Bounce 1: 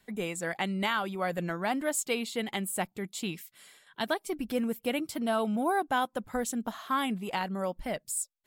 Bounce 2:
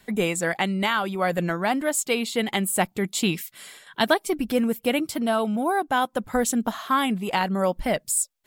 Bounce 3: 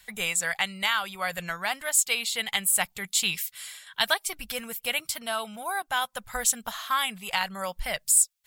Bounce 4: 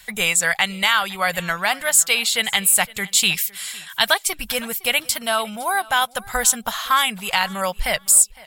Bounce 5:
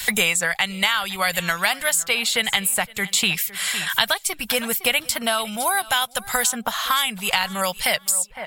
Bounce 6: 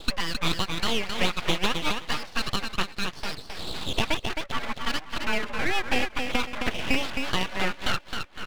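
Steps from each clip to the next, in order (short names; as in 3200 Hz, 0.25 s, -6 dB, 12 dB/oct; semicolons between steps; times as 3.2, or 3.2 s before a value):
vocal rider 0.5 s; gain +7.5 dB
passive tone stack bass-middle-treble 10-0-10; gain +4.5 dB
in parallel at -0.5 dB: limiter -16 dBFS, peak gain reduction 8 dB; on the sum: feedback echo 0.51 s, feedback 23%, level -22 dB; gain +3.5 dB
three-band squash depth 100%; gain -2.5 dB
feedback echo 0.265 s, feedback 15%, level -5.5 dB; mistuned SSB +74 Hz 240–2100 Hz; full-wave rectifier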